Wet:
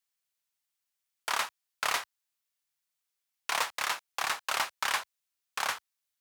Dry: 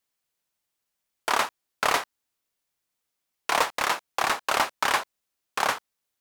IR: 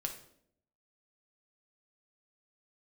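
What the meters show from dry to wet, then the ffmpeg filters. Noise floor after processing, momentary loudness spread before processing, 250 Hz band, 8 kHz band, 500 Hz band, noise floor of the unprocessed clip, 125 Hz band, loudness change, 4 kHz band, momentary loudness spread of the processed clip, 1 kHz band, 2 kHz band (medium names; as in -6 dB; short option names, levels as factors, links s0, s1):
-85 dBFS, 11 LU, -15.0 dB, -3.0 dB, -12.0 dB, -82 dBFS, under -10 dB, -6.0 dB, -3.5 dB, 11 LU, -8.0 dB, -5.0 dB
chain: -af "highpass=85,equalizer=f=300:t=o:w=3:g=-12.5,volume=0.708"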